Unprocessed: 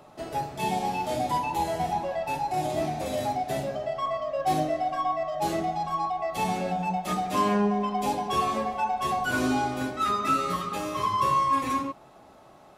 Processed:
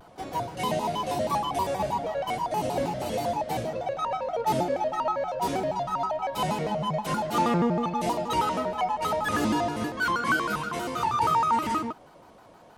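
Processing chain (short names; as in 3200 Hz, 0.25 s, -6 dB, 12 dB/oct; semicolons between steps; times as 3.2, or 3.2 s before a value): shaped vibrato square 6.3 Hz, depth 250 cents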